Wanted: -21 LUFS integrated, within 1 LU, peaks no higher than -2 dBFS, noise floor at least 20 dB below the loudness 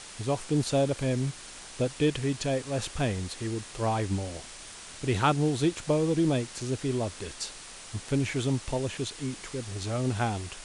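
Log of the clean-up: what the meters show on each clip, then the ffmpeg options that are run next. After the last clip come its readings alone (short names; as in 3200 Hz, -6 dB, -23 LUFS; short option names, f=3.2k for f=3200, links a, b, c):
noise floor -45 dBFS; noise floor target -50 dBFS; loudness -30.0 LUFS; peak -10.0 dBFS; loudness target -21.0 LUFS
-> -af "afftdn=nr=6:nf=-45"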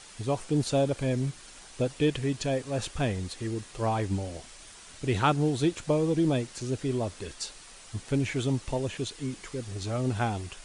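noise floor -49 dBFS; noise floor target -50 dBFS
-> -af "afftdn=nr=6:nf=-49"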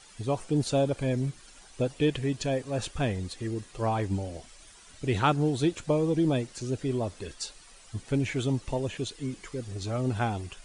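noise floor -53 dBFS; loudness -30.0 LUFS; peak -10.0 dBFS; loudness target -21.0 LUFS
-> -af "volume=9dB,alimiter=limit=-2dB:level=0:latency=1"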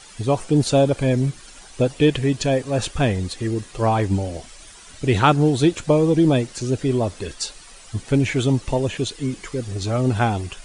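loudness -21.0 LUFS; peak -2.0 dBFS; noise floor -44 dBFS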